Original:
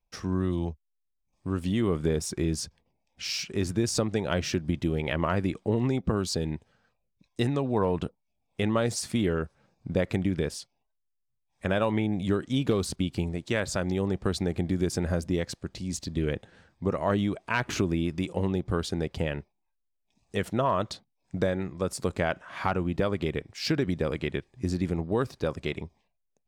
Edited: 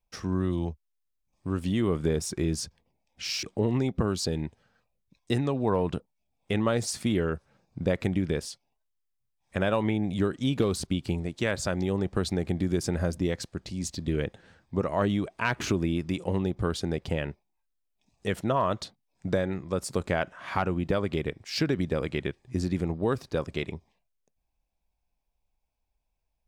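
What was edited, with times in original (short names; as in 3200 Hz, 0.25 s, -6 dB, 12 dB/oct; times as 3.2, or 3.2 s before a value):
3.43–5.52 cut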